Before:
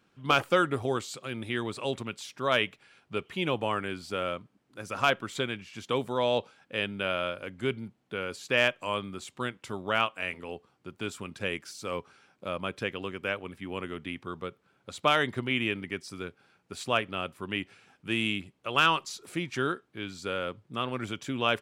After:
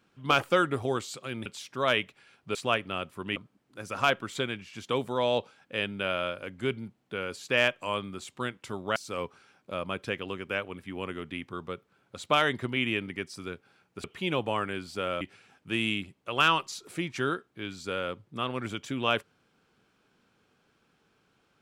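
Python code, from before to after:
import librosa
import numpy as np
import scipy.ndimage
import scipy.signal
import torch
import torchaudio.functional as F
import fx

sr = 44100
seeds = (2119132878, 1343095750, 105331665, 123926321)

y = fx.edit(x, sr, fx.cut(start_s=1.46, length_s=0.64),
    fx.swap(start_s=3.19, length_s=1.17, other_s=16.78, other_length_s=0.81),
    fx.cut(start_s=9.96, length_s=1.74), tone=tone)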